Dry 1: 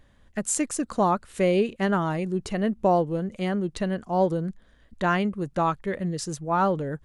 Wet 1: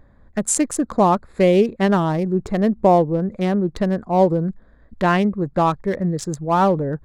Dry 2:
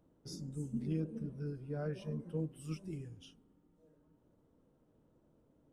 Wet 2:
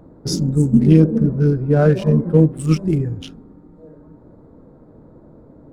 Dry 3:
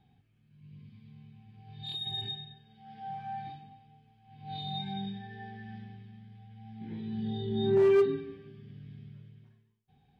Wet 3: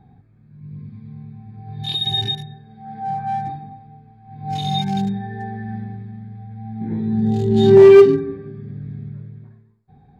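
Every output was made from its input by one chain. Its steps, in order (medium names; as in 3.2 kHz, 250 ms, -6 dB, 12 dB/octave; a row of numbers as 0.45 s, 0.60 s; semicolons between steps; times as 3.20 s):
local Wiener filter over 15 samples; dynamic bell 1.4 kHz, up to -5 dB, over -46 dBFS, Q 3.8; peak normalisation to -2 dBFS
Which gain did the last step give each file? +7.5 dB, +25.5 dB, +16.0 dB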